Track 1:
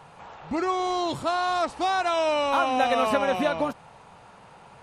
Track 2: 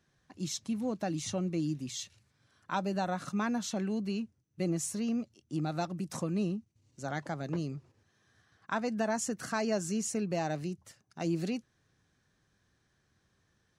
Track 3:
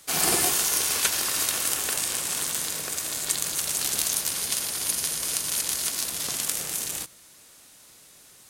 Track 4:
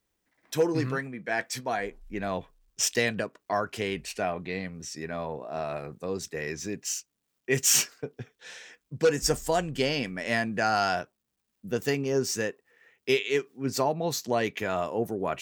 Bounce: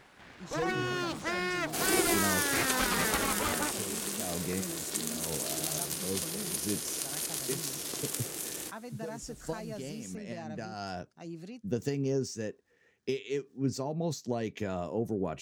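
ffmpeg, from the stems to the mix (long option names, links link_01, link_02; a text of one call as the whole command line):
ffmpeg -i stem1.wav -i stem2.wav -i stem3.wav -i stem4.wav -filter_complex "[0:a]aeval=exprs='abs(val(0))':channel_layout=same,volume=-4dB[link_01];[1:a]volume=-11dB,asplit=2[link_02][link_03];[2:a]equalizer=frequency=350:width=1.2:gain=12,adelay=1650,volume=-8.5dB[link_04];[3:a]equalizer=frequency=6100:width=0.6:gain=12,acompressor=threshold=-26dB:ratio=6,tiltshelf=frequency=650:gain=9.5,volume=-4.5dB[link_05];[link_03]apad=whole_len=679788[link_06];[link_05][link_06]sidechaincompress=threshold=-52dB:ratio=8:attack=45:release=165[link_07];[link_01][link_02][link_04][link_07]amix=inputs=4:normalize=0,highpass=40" out.wav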